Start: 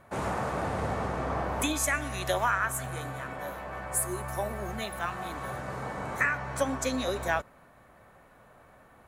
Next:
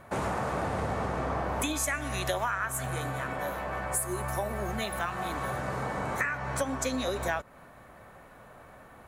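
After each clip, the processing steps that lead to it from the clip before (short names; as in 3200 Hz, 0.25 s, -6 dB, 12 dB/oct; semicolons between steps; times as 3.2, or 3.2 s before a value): compressor 3:1, threshold -34 dBFS, peak gain reduction 9.5 dB; gain +5 dB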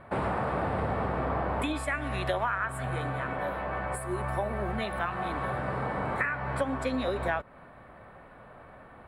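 running mean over 7 samples; gain +1.5 dB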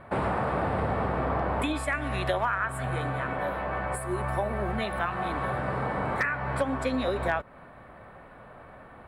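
hard clip -18.5 dBFS, distortion -34 dB; gain +2 dB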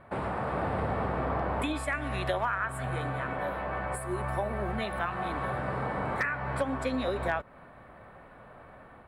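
AGC gain up to 3 dB; gain -5.5 dB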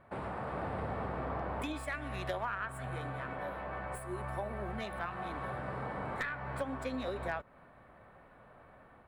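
tracing distortion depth 0.042 ms; gain -7 dB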